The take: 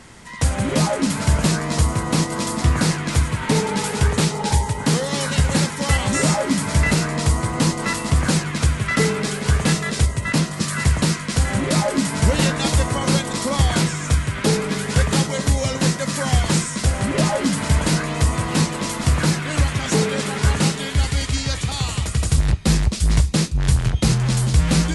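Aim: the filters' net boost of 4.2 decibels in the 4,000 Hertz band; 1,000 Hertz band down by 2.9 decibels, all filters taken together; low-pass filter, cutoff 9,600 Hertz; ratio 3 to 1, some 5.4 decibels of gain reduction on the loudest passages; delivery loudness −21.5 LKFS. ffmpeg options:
ffmpeg -i in.wav -af "lowpass=9600,equalizer=frequency=1000:width_type=o:gain=-4,equalizer=frequency=4000:width_type=o:gain=5.5,acompressor=threshold=-19dB:ratio=3,volume=1.5dB" out.wav

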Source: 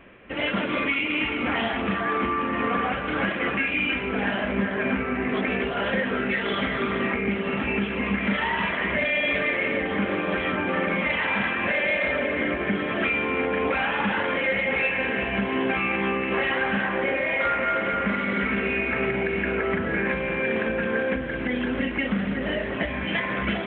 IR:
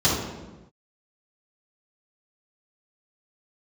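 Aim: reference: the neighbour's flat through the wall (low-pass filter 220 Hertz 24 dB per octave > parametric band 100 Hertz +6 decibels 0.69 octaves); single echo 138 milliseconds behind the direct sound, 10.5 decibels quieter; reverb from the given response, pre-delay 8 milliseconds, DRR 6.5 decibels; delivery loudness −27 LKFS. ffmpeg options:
-filter_complex "[0:a]aecho=1:1:138:0.299,asplit=2[link_01][link_02];[1:a]atrim=start_sample=2205,adelay=8[link_03];[link_02][link_03]afir=irnorm=-1:irlink=0,volume=-23.5dB[link_04];[link_01][link_04]amix=inputs=2:normalize=0,lowpass=frequency=220:width=0.5412,lowpass=frequency=220:width=1.3066,equalizer=frequency=100:width_type=o:width=0.69:gain=6,volume=3dB"

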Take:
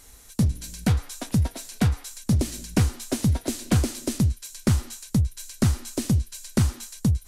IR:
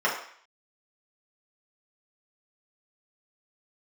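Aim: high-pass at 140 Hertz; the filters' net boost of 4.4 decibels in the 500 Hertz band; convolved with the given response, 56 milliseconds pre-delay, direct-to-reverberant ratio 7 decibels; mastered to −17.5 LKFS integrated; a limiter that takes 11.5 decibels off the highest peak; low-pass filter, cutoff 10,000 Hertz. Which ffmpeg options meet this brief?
-filter_complex "[0:a]highpass=140,lowpass=10000,equalizer=frequency=500:width_type=o:gain=6,alimiter=limit=-17dB:level=0:latency=1,asplit=2[link_01][link_02];[1:a]atrim=start_sample=2205,adelay=56[link_03];[link_02][link_03]afir=irnorm=-1:irlink=0,volume=-21.5dB[link_04];[link_01][link_04]amix=inputs=2:normalize=0,volume=14dB"

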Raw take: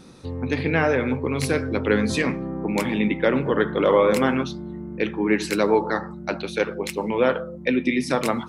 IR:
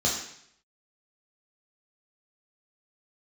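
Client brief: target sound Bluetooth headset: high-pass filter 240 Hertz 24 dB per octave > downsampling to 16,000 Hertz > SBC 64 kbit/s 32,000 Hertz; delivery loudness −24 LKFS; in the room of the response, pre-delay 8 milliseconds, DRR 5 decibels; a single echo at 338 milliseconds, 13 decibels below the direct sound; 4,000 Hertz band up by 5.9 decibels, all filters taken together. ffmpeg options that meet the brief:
-filter_complex "[0:a]equalizer=frequency=4000:width_type=o:gain=7,aecho=1:1:338:0.224,asplit=2[link_01][link_02];[1:a]atrim=start_sample=2205,adelay=8[link_03];[link_02][link_03]afir=irnorm=-1:irlink=0,volume=-16dB[link_04];[link_01][link_04]amix=inputs=2:normalize=0,highpass=frequency=240:width=0.5412,highpass=frequency=240:width=1.3066,aresample=16000,aresample=44100,volume=-2.5dB" -ar 32000 -c:a sbc -b:a 64k

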